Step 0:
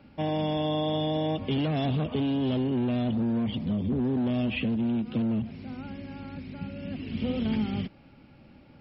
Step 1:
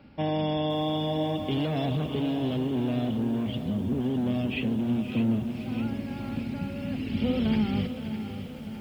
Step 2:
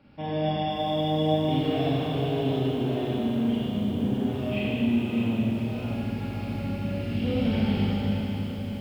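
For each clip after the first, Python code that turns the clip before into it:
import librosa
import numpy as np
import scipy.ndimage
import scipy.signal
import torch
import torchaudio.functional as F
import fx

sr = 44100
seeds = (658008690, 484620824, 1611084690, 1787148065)

y1 = fx.echo_feedback(x, sr, ms=607, feedback_pct=51, wet_db=-11.0)
y1 = fx.rider(y1, sr, range_db=4, speed_s=2.0)
y1 = fx.echo_crushed(y1, sr, ms=519, feedback_pct=55, bits=8, wet_db=-12.0)
y2 = fx.rev_schroeder(y1, sr, rt60_s=3.1, comb_ms=30, drr_db=-7.5)
y2 = y2 * librosa.db_to_amplitude(-6.0)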